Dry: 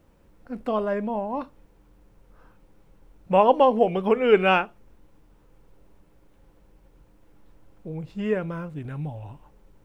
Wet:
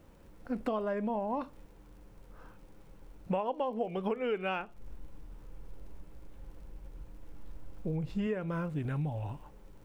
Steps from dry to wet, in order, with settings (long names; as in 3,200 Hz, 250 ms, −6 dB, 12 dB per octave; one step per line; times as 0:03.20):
0:04.59–0:08.27: low-shelf EQ 90 Hz +10 dB
downward compressor 12 to 1, threshold −31 dBFS, peak gain reduction 20 dB
surface crackle 72 per second −57 dBFS
level +1.5 dB